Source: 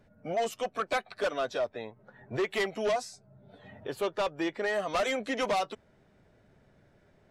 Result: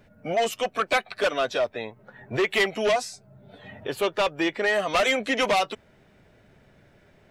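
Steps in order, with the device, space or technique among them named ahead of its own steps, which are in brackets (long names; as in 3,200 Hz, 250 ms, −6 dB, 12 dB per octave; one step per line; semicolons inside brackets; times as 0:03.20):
presence and air boost (parametric band 2,600 Hz +5.5 dB 1.1 octaves; high-shelf EQ 11,000 Hz +6 dB)
level +5.5 dB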